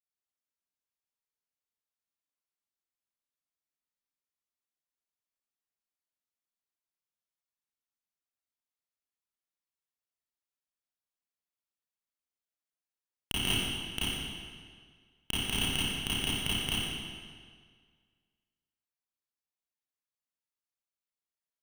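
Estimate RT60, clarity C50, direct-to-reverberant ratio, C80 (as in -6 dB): 1.8 s, -5.5 dB, -11.0 dB, -2.0 dB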